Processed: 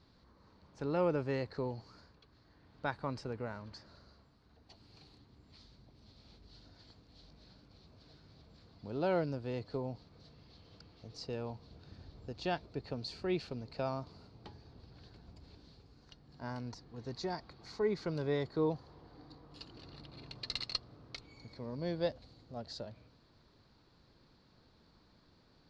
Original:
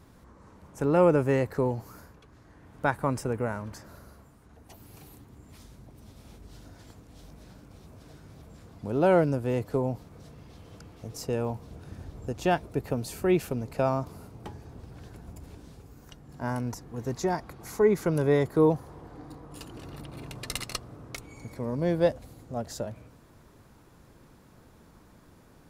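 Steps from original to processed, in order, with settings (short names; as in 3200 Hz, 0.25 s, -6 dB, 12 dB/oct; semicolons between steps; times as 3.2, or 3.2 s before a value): ladder low-pass 4700 Hz, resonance 75%; gain +1 dB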